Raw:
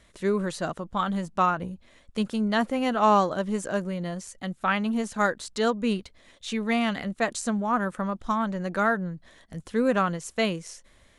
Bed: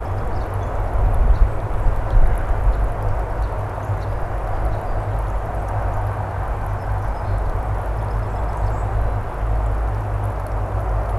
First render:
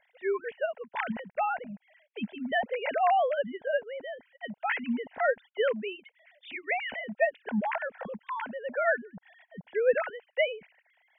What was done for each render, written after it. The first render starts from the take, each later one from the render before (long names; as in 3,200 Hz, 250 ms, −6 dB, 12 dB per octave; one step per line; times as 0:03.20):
three sine waves on the formant tracks
phaser with its sweep stopped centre 1,200 Hz, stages 6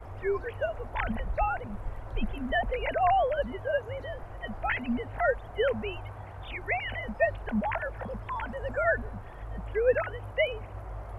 mix in bed −18.5 dB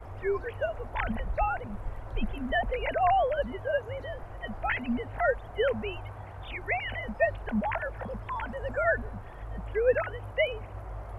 no processing that can be heard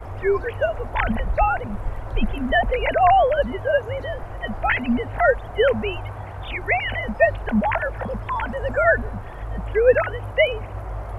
level +9 dB